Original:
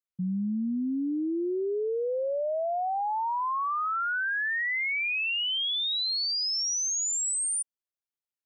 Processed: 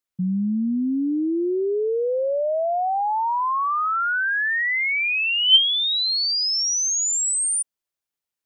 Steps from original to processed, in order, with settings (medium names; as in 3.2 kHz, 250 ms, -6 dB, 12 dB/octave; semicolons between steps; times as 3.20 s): 4.99–6.29 s: small resonant body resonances 260/3100 Hz, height 13 dB, ringing for 40 ms; trim +6.5 dB